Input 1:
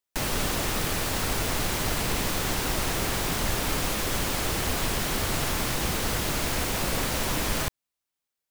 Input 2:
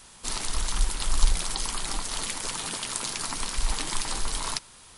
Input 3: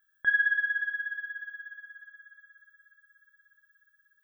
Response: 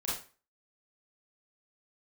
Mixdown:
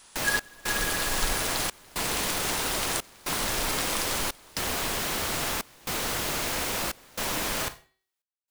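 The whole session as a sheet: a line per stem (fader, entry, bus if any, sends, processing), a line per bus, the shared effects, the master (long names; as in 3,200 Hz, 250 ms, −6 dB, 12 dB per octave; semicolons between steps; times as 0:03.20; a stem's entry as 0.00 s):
−1.0 dB, 0.00 s, send −15 dB, hum removal 379.5 Hz, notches 13
−2.5 dB, 0.00 s, no send, no processing
−3.0 dB, 0.00 s, no send, no processing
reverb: on, RT60 0.35 s, pre-delay 27 ms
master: low-shelf EQ 220 Hz −10.5 dB; gate pattern "xxx..xxxxx" 115 BPM −24 dB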